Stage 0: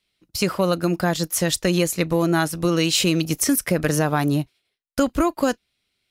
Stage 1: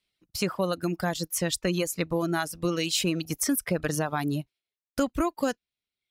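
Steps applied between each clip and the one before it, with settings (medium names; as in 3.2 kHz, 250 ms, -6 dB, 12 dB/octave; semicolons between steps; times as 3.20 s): reverb removal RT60 1 s; trim -6 dB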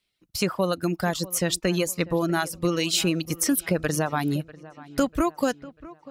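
feedback echo behind a low-pass 644 ms, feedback 44%, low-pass 2.9 kHz, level -19 dB; trim +3 dB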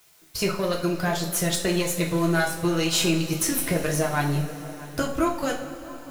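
partial rectifier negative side -7 dB; word length cut 10-bit, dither triangular; two-slope reverb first 0.41 s, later 4.5 s, from -18 dB, DRR -1.5 dB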